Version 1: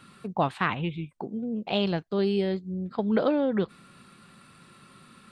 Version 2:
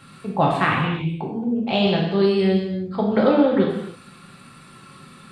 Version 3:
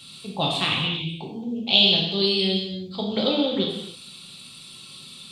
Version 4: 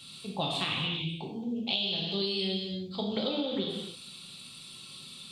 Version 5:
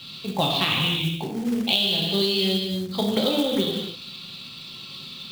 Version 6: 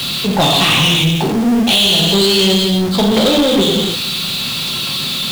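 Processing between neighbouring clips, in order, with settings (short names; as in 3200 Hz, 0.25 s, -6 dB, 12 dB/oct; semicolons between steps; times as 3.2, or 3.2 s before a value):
non-linear reverb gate 0.33 s falling, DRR -2.5 dB; gain +3.5 dB
resonant high shelf 2400 Hz +13 dB, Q 3; gain -6.5 dB
compressor 12:1, threshold -23 dBFS, peak gain reduction 11.5 dB; gain -4 dB
LPF 5300 Hz 24 dB/oct; short-mantissa float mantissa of 2-bit; gain +9 dB
zero-crossing step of -29 dBFS; sample leveller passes 3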